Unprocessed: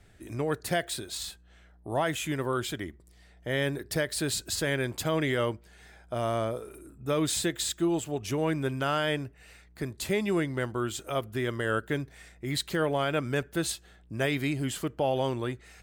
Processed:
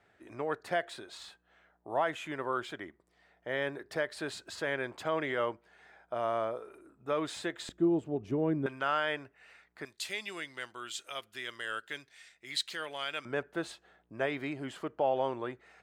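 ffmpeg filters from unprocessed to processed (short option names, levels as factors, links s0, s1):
-af "asetnsamples=n=441:p=0,asendcmd='7.69 bandpass f 300;8.66 bandpass f 1300;9.85 bandpass f 3700;13.25 bandpass f 860',bandpass=f=1000:t=q:w=0.8:csg=0"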